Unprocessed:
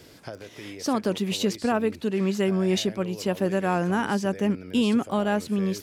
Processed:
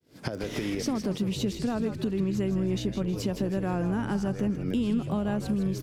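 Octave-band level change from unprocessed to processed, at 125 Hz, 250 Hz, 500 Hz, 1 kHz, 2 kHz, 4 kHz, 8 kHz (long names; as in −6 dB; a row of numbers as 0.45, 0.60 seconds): +0.5, −2.0, −6.0, −9.0, −8.0, −7.0, −5.5 decibels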